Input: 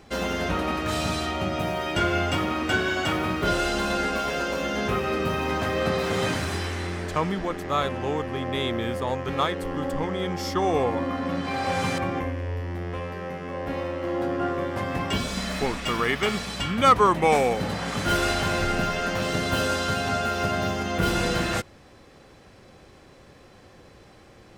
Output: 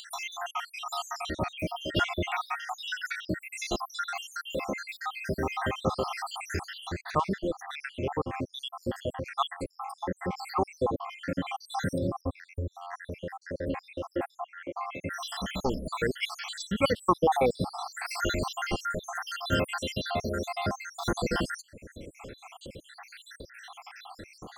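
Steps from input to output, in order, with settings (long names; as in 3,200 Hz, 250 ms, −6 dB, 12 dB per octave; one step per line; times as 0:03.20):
time-frequency cells dropped at random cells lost 77%
upward compression, threshold −33 dBFS
0:14.39–0:15.01: resonant band-pass 500 Hz → 1,500 Hz, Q 0.58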